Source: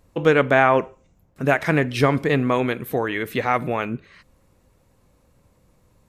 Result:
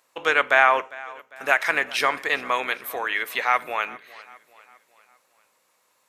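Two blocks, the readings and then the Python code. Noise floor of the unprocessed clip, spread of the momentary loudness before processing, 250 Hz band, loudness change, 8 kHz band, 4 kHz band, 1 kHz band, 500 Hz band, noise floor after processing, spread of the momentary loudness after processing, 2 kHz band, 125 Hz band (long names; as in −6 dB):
−61 dBFS, 10 LU, −18.5 dB, −1.5 dB, +3.5 dB, +3.5 dB, 0.0 dB, −7.5 dB, −67 dBFS, 16 LU, +3.0 dB, below −25 dB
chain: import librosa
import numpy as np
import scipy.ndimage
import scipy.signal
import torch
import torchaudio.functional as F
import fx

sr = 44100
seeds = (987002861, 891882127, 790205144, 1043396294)

y = fx.octave_divider(x, sr, octaves=2, level_db=1.0)
y = scipy.signal.sosfilt(scipy.signal.butter(2, 1000.0, 'highpass', fs=sr, output='sos'), y)
y = fx.echo_feedback(y, sr, ms=401, feedback_pct=48, wet_db=-20.5)
y = y * librosa.db_to_amplitude(3.5)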